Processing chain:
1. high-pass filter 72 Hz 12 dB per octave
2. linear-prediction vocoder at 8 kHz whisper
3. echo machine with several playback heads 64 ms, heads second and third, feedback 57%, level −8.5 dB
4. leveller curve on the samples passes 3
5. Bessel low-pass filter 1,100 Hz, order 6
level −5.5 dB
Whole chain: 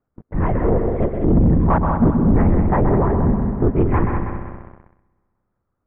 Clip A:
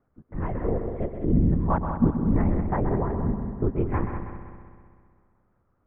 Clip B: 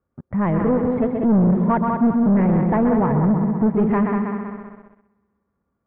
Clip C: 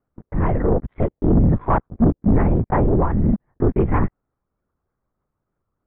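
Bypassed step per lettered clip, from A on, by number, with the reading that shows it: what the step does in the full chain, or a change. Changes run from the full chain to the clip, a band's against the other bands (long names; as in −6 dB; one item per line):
4, change in crest factor +8.0 dB
2, 125 Hz band −3.5 dB
3, change in momentary loudness spread −4 LU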